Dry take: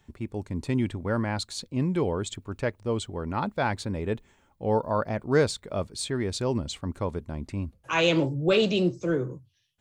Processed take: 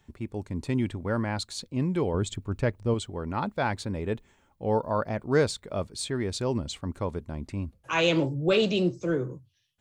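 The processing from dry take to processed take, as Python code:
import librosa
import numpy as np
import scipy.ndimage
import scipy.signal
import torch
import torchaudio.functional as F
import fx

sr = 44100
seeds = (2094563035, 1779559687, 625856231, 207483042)

y = fx.low_shelf(x, sr, hz=240.0, db=8.5, at=(2.14, 2.94))
y = y * librosa.db_to_amplitude(-1.0)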